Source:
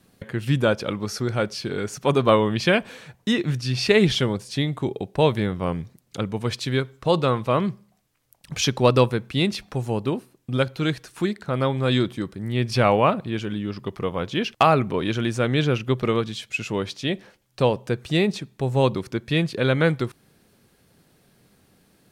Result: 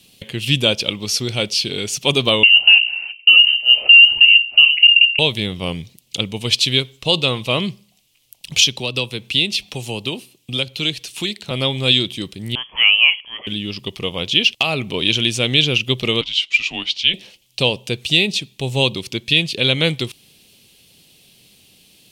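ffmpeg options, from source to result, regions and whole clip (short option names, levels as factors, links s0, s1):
-filter_complex "[0:a]asettb=1/sr,asplit=3[s0][s1][s2];[s0]atrim=end=2.434[s3];[s1]atrim=start=2.43:end=5.19,asetpts=PTS-STARTPTS,afade=t=in:d=0.004:c=qsin,afade=t=out:st=2.756:d=0.004:c=qsin,highpass=f=400:t=q:w=4.7,bandreject=f=60:t=h:w=6,bandreject=f=120:t=h:w=6,bandreject=f=180:t=h:w=6,bandreject=f=240:t=h:w=6,bandreject=f=300:t=h:w=6,bandreject=f=360:t=h:w=6,bandreject=f=420:t=h:w=6,bandreject=f=480:t=h:w=6,bandreject=f=540:t=h:w=6,lowpass=f=2700:t=q:w=0.5098,lowpass=f=2700:t=q:w=0.6013,lowpass=f=2700:t=q:w=0.9,lowpass=f=2700:t=q:w=2.563,afreqshift=-3200[s4];[s2]atrim=start=5.186[s5];[s3][s4]acrossfade=d=0.004:c1=hsin:c2=qsin[s6];[s6][s5]acrossfade=d=0.004:c1=qsin:c2=hsin,asettb=1/sr,asplit=3[s7][s8][s9];[s7]atrim=end=8.764[s10];[s8]atrim=start=8.76:end=11.51,asetpts=PTS-STARTPTS,afade=t=in:d=0.004:c=qsin,afade=t=out:st=2.746:d=0.004:c=qsin,acrossover=split=320|640[s11][s12][s13];[s11]acompressor=threshold=0.0355:ratio=4[s14];[s12]acompressor=threshold=0.0282:ratio=4[s15];[s13]acompressor=threshold=0.0282:ratio=4[s16];[s14][s15][s16]amix=inputs=3:normalize=0,highpass=40[s17];[s9]atrim=start=11.506[s18];[s10][s17]acrossfade=d=0.004:c1=hsin:c2=qsin[s19];[s19][s18]acrossfade=d=0.004:c1=qsin:c2=hsin,asettb=1/sr,asplit=3[s20][s21][s22];[s20]atrim=end=12.554[s23];[s21]atrim=start=12.55:end=13.47,asetpts=PTS-STARTPTS,afade=t=in:d=0.004:c=qsin,afade=t=out:st=0.916:d=0.004:c=qsin,highpass=1200,lowpass=f=3000:t=q:w=0.5098,lowpass=f=3000:t=q:w=0.6013,lowpass=f=3000:t=q:w=0.9,lowpass=f=3000:t=q:w=2.563,afreqshift=-3500[s24];[s22]atrim=start=13.466[s25];[s23][s24]acrossfade=d=0.004:c1=hsin:c2=qsin[s26];[s26][s25]acrossfade=d=0.004:c1=qsin:c2=hsin,asettb=1/sr,asplit=3[s27][s28][s29];[s27]atrim=end=16.214[s30];[s28]atrim=start=16.21:end=17.14,asetpts=PTS-STARTPTS,afade=t=in:d=0.004:c=qsin,afade=t=out:st=0.926:d=0.004:c=qsin,highpass=590,lowpass=4400,afreqshift=-180[s31];[s29]atrim=start=17.136[s32];[s30][s31]acrossfade=d=0.004:c1=hsin:c2=qsin[s33];[s33][s32]acrossfade=d=0.004:c1=qsin:c2=hsin,highshelf=f=2100:t=q:w=3:g=11,alimiter=limit=0.794:level=0:latency=1:release=336,volume=1.12"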